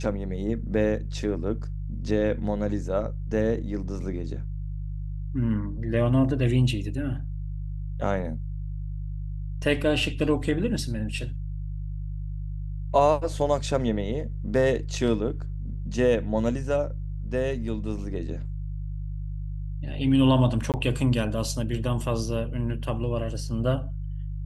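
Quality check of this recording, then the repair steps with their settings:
hum 50 Hz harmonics 3 -32 dBFS
20.72–20.74 gap 18 ms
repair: de-hum 50 Hz, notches 3; interpolate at 20.72, 18 ms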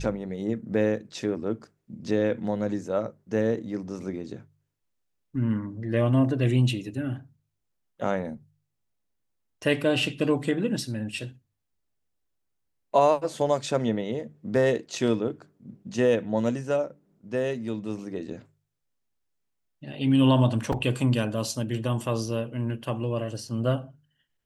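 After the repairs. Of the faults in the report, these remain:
none

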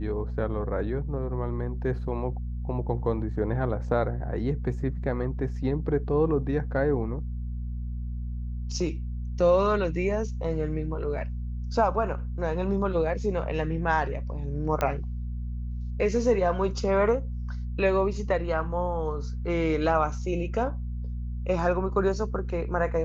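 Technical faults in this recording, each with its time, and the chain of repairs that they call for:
hum 60 Hz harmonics 4 -32 dBFS
14.81 pop -13 dBFS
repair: de-click; de-hum 60 Hz, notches 4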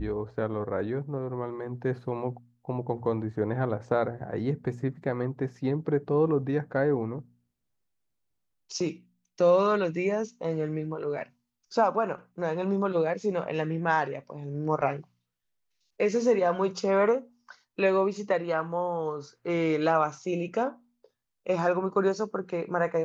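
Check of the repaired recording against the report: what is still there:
14.81 pop

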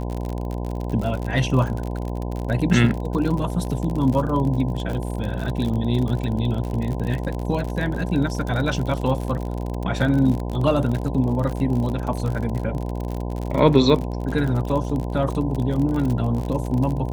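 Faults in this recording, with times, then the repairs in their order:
buzz 60 Hz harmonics 17 -27 dBFS
crackle 49/s -26 dBFS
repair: de-click; de-hum 60 Hz, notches 17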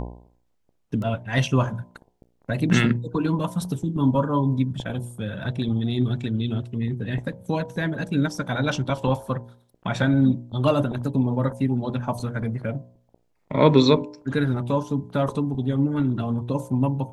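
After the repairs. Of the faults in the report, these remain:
none

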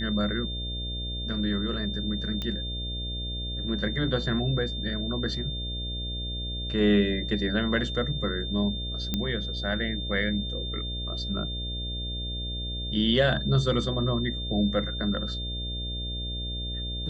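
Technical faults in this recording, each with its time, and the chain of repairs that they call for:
buzz 60 Hz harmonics 11 -34 dBFS
tone 3600 Hz -34 dBFS
2.42 pop -19 dBFS
9.14 pop -13 dBFS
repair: de-click; notch 3600 Hz, Q 30; de-hum 60 Hz, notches 11

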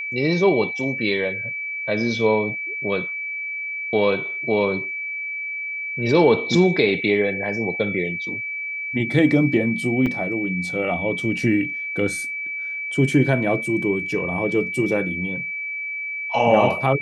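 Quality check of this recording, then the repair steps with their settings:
tone 2300 Hz -26 dBFS
10.06 gap 4.7 ms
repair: notch 2300 Hz, Q 30; interpolate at 10.06, 4.7 ms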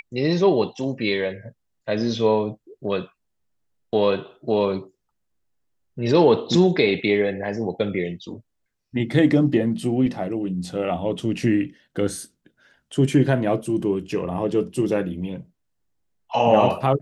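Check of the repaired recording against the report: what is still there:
none

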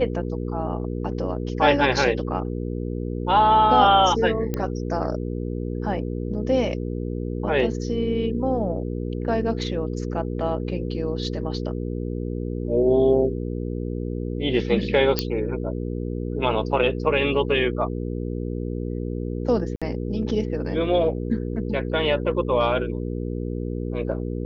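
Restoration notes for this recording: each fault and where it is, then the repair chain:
hum 60 Hz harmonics 8 -28 dBFS
4.54 pop -13 dBFS
15.19 pop -7 dBFS
19.76–19.82 gap 56 ms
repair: de-click; de-hum 60 Hz, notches 8; interpolate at 19.76, 56 ms

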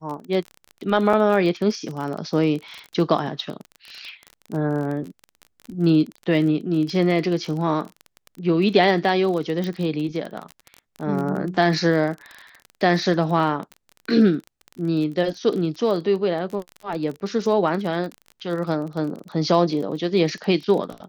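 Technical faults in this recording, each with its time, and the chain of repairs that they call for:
crackle 27/s -28 dBFS
1.13 gap 3.9 ms
9.64 pop -16 dBFS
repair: de-click; interpolate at 1.13, 3.9 ms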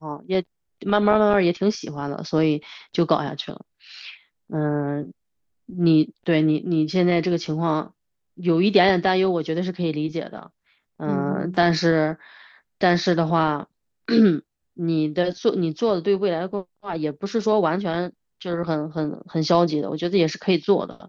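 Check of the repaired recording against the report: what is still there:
none

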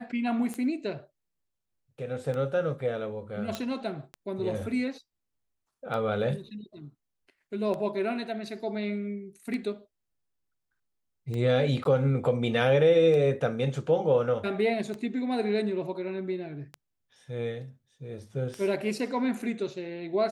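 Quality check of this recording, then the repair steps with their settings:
tick 33 1/3 rpm -23 dBFS
3.55 pop -17 dBFS
11.84–11.85 gap 12 ms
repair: de-click; interpolate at 11.84, 12 ms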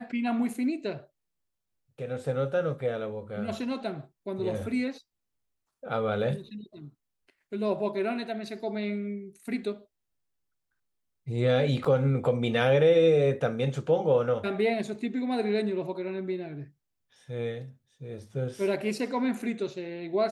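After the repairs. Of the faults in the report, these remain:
none

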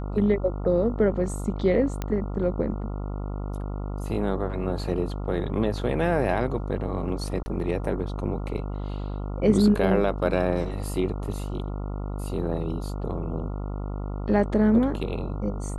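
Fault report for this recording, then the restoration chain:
buzz 50 Hz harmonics 28 -31 dBFS
2.02 pop -15 dBFS
7.43–7.46 gap 30 ms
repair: de-click; de-hum 50 Hz, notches 28; interpolate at 7.43, 30 ms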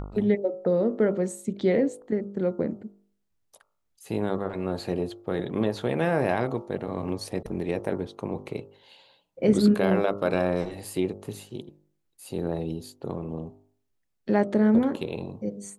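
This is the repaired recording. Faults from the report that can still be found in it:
none

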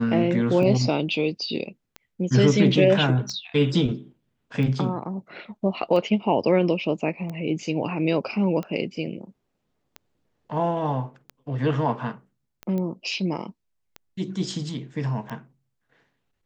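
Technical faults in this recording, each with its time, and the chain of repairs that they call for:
tick 45 rpm -21 dBFS
12.78 pop -19 dBFS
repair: de-click

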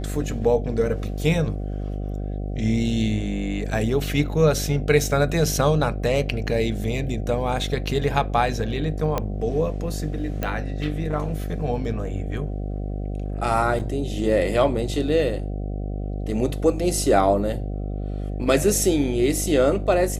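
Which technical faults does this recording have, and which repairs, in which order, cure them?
buzz 50 Hz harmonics 15 -28 dBFS
9.18 pop -10 dBFS
10.43 pop -12 dBFS
13.79–13.8 gap 7.2 ms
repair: de-click; de-hum 50 Hz, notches 15; interpolate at 13.79, 7.2 ms

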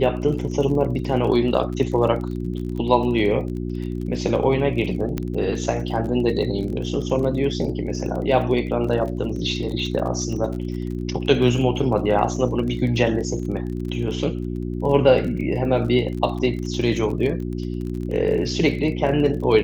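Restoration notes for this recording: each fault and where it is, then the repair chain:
crackle 25/s -30 dBFS
hum 60 Hz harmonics 6 -27 dBFS
5.18 pop -12 dBFS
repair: de-click; de-hum 60 Hz, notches 6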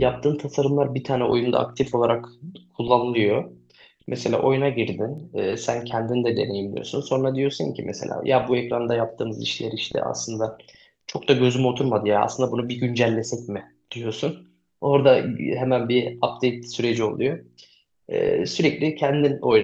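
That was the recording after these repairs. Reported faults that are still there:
5.18 pop

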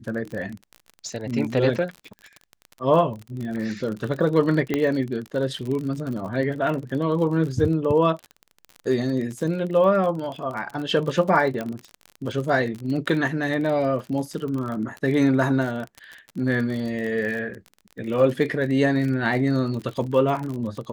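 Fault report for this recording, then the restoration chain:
crackle 39/s -29 dBFS
4.74 pop -10 dBFS
11.61 pop -16 dBFS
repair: de-click

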